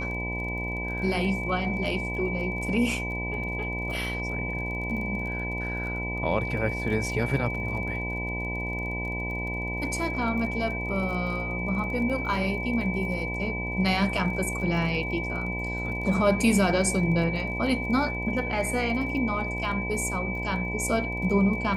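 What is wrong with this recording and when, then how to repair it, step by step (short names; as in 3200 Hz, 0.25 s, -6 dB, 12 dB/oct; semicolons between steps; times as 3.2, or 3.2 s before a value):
buzz 60 Hz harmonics 17 -33 dBFS
crackle 28/s -36 dBFS
tone 2300 Hz -32 dBFS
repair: de-click; de-hum 60 Hz, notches 17; notch 2300 Hz, Q 30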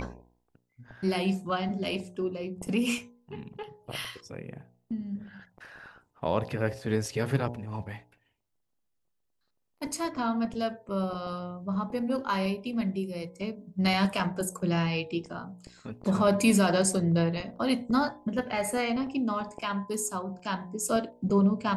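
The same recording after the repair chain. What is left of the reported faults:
none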